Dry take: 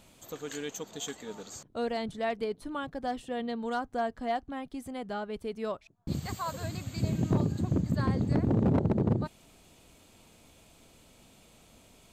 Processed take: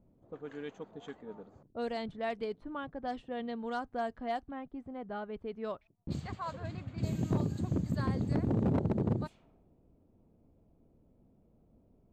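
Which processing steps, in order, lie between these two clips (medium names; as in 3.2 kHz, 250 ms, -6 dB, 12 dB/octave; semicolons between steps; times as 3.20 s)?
level-controlled noise filter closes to 380 Hz, open at -26 dBFS; trim -4 dB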